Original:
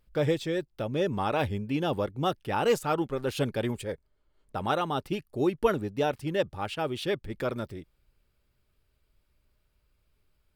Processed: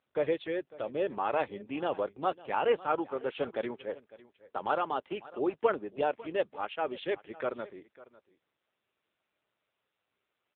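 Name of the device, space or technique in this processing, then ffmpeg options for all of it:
satellite phone: -af "highpass=400,lowpass=3200,aecho=1:1:550:0.106" -ar 8000 -c:a libopencore_amrnb -b:a 6700

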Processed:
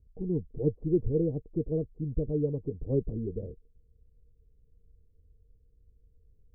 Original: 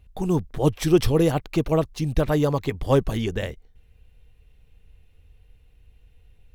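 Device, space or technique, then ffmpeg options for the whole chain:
under water: -filter_complex "[0:a]lowpass=f=420:w=0.5412,lowpass=f=420:w=1.3066,equalizer=f=460:t=o:w=0.23:g=9,asettb=1/sr,asplit=3[s0][s1][s2];[s0]atrim=end=0.864[s3];[s1]atrim=start=0.86:end=2.59,asetpts=PTS-STARTPTS,afade=t=in:d=0.004:c=qsin,afade=t=out:st=1.726:d=0.004:c=qsin,lowpass=f=1000:p=1[s4];[s2]atrim=start=2.586[s5];[s3][s4]acrossfade=d=0.004:c1=hsin:c2=qsin[s6];[s6][s5]acrossfade=d=0.004:c1=qsin:c2=hsin,volume=0.398"

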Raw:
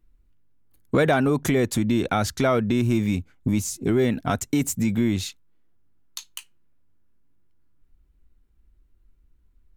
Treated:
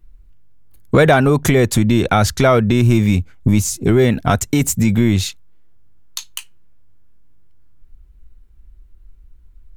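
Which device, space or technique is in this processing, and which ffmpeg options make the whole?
low shelf boost with a cut just above: -af "lowshelf=f=90:g=8,equalizer=f=270:t=o:w=0.65:g=-4.5,volume=2.66"

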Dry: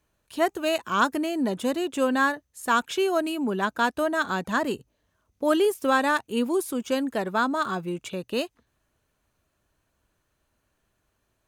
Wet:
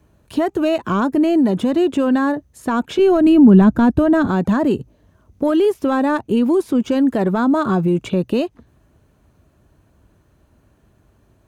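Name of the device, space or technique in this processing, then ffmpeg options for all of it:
mastering chain: -filter_complex "[0:a]highpass=47,equalizer=f=490:t=o:w=0.38:g=-2.5,acrossover=split=960|5200[s0][s1][s2];[s0]acompressor=threshold=0.0398:ratio=4[s3];[s1]acompressor=threshold=0.0282:ratio=4[s4];[s2]acompressor=threshold=0.00251:ratio=4[s5];[s3][s4][s5]amix=inputs=3:normalize=0,acompressor=threshold=0.0224:ratio=1.5,asoftclip=type=tanh:threshold=0.106,tiltshelf=f=800:g=8,alimiter=level_in=13.3:limit=0.891:release=50:level=0:latency=1,asettb=1/sr,asplit=3[s6][s7][s8];[s6]atrim=end=2.994[s9];[s7]atrim=start=2.99:end=4.27,asetpts=PTS-STARTPTS,afade=t=in:d=0.004:c=qsin,afade=t=out:st=1.276:d=0.004:c=qsin,bass=f=250:g=14,treble=f=4000:g=-2[s10];[s8]atrim=start=4.266[s11];[s9][s10]acrossfade=d=0.004:c1=hsin:c2=qsin[s12];[s12][s11]acrossfade=d=0.004:c1=qsin:c2=hsin,volume=0.376"

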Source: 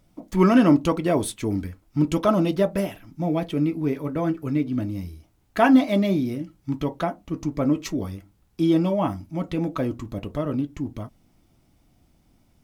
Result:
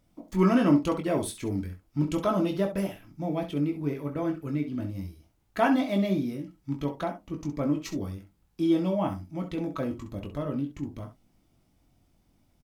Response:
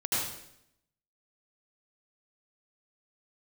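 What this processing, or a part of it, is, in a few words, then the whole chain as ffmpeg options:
slapback doubling: -filter_complex "[0:a]asplit=3[s0][s1][s2];[s1]adelay=21,volume=0.501[s3];[s2]adelay=66,volume=0.299[s4];[s0][s3][s4]amix=inputs=3:normalize=0,volume=0.473"

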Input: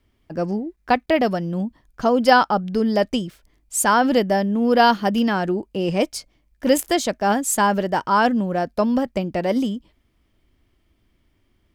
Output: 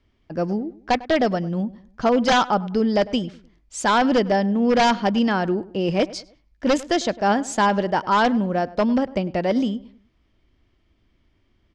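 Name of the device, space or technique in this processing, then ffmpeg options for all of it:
synthesiser wavefolder: -filter_complex "[0:a]aeval=exprs='0.282*(abs(mod(val(0)/0.282+3,4)-2)-1)':c=same,lowpass=f=6200:w=0.5412,lowpass=f=6200:w=1.3066,asplit=2[s0][s1];[s1]adelay=101,lowpass=f=2100:p=1,volume=0.119,asplit=2[s2][s3];[s3]adelay=101,lowpass=f=2100:p=1,volume=0.39,asplit=2[s4][s5];[s5]adelay=101,lowpass=f=2100:p=1,volume=0.39[s6];[s0][s2][s4][s6]amix=inputs=4:normalize=0"

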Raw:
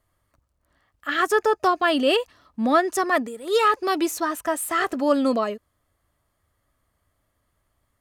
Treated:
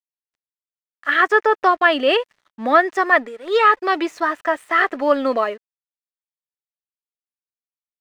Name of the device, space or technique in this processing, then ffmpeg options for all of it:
pocket radio on a weak battery: -af "highpass=390,lowpass=3200,aeval=exprs='sgn(val(0))*max(abs(val(0))-0.00211,0)':c=same,equalizer=f=1900:t=o:w=0.46:g=6,volume=1.78"

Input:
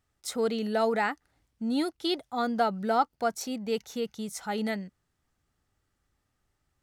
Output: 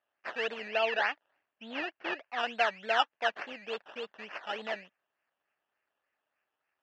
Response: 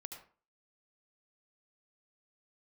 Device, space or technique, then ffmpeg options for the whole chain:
circuit-bent sampling toy: -filter_complex "[0:a]acrusher=samples=16:mix=1:aa=0.000001:lfo=1:lforange=9.6:lforate=3.4,highpass=590,equalizer=f=620:t=q:w=4:g=5,equalizer=f=1700:t=q:w=4:g=8,equalizer=f=2700:t=q:w=4:g=10,equalizer=f=3900:t=q:w=4:g=-6,lowpass=f=4500:w=0.5412,lowpass=f=4500:w=1.3066,asettb=1/sr,asplit=3[s0][s1][s2];[s0]atrim=end=0.684[s3];[s1]atrim=start=0.68:end=2.39,asetpts=PTS-STARTPTS,afade=t=in:d=0.004:c=qsin,afade=t=out:st=1.706:d=0.004:c=qsin,lowpass=5200[s4];[s2]atrim=start=2.386[s5];[s3][s4]acrossfade=d=0.004:c1=hsin:c2=qsin[s6];[s6][s5]acrossfade=d=0.004:c1=qsin:c2=hsin,lowshelf=f=170:g=5.5,volume=0.631"

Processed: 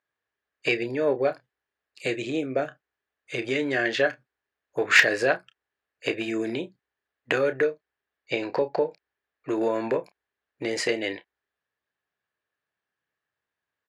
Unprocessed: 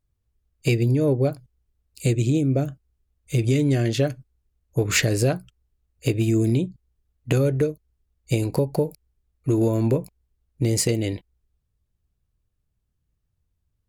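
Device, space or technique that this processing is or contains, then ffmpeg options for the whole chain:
megaphone: -filter_complex "[0:a]highpass=600,lowpass=3100,equalizer=f=1700:t=o:w=0.34:g=10.5,asoftclip=type=hard:threshold=0.224,asplit=2[s0][s1];[s1]adelay=31,volume=0.251[s2];[s0][s2]amix=inputs=2:normalize=0,asettb=1/sr,asplit=3[s3][s4][s5];[s3]atrim=end=7.654[s6];[s4]atrim=start=7.65:end=9.49,asetpts=PTS-STARTPTS,afade=t=in:d=0.004:c=qsin,afade=t=out:st=1.836:d=0.004:c=qsin,lowpass=f=6000:w=0.5412,lowpass=f=6000:w=1.3066[s7];[s5]atrim=start=9.486[s8];[s6][s7]acrossfade=d=0.004:c1=hsin:c2=qsin[s9];[s9][s8]acrossfade=d=0.004:c1=qsin:c2=hsin,volume=1.78"

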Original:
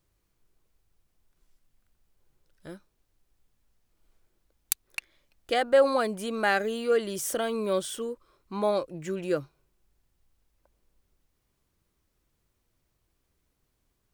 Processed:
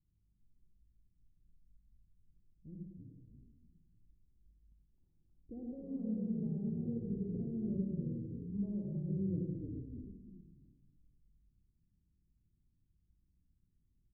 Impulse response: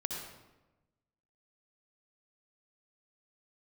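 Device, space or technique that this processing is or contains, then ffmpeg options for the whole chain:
club heard from the street: -filter_complex "[0:a]asplit=5[s0][s1][s2][s3][s4];[s1]adelay=314,afreqshift=-56,volume=0.501[s5];[s2]adelay=628,afreqshift=-112,volume=0.166[s6];[s3]adelay=942,afreqshift=-168,volume=0.0543[s7];[s4]adelay=1256,afreqshift=-224,volume=0.018[s8];[s0][s5][s6][s7][s8]amix=inputs=5:normalize=0,alimiter=limit=0.168:level=0:latency=1:release=333,lowpass=f=240:w=0.5412,lowpass=f=240:w=1.3066[s9];[1:a]atrim=start_sample=2205[s10];[s9][s10]afir=irnorm=-1:irlink=0,volume=0.75"

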